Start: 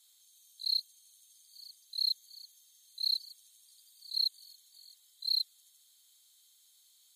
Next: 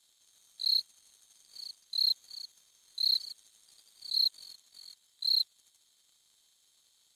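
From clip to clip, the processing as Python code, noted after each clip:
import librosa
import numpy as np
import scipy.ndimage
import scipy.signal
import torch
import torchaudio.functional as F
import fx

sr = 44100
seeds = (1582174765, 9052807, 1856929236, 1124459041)

y = fx.leveller(x, sr, passes=2)
y = scipy.signal.sosfilt(scipy.signal.butter(2, 9300.0, 'lowpass', fs=sr, output='sos'), y)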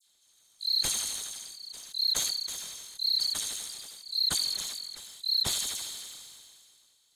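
y = fx.dispersion(x, sr, late='lows', ms=62.0, hz=2100.0)
y = fx.sustainer(y, sr, db_per_s=26.0)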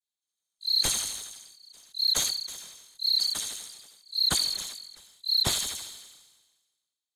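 y = fx.band_widen(x, sr, depth_pct=70)
y = y * 10.0 ** (1.5 / 20.0)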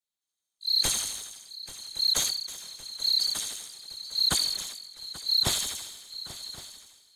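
y = fx.echo_swing(x, sr, ms=1113, ratio=3, feedback_pct=61, wet_db=-17.0)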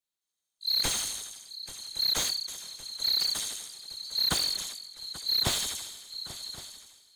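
y = fx.slew_limit(x, sr, full_power_hz=280.0)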